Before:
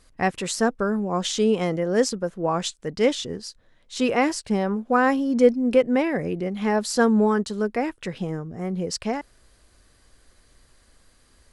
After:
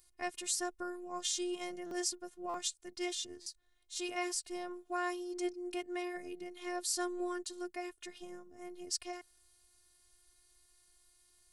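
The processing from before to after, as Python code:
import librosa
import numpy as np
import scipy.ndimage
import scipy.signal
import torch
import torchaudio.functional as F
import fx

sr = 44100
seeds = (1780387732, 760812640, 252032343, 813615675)

y = fx.robotise(x, sr, hz=355.0)
y = F.preemphasis(torch.from_numpy(y), 0.8).numpy()
y = fx.buffer_glitch(y, sr, at_s=(1.86, 2.49, 3.41), block=256, repeats=8)
y = y * librosa.db_to_amplitude(-1.5)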